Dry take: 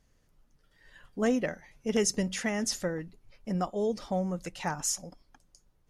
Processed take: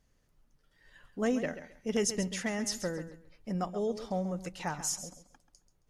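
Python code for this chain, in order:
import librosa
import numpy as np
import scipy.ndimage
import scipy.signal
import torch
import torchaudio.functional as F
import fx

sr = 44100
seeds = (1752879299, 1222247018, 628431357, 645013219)

y = fx.echo_feedback(x, sr, ms=135, feedback_pct=23, wet_db=-12)
y = y * 10.0 ** (-3.0 / 20.0)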